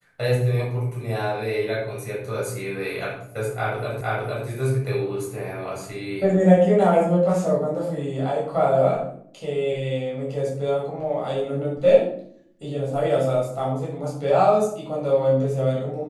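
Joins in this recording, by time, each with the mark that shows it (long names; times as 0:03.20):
0:04.01: the same again, the last 0.46 s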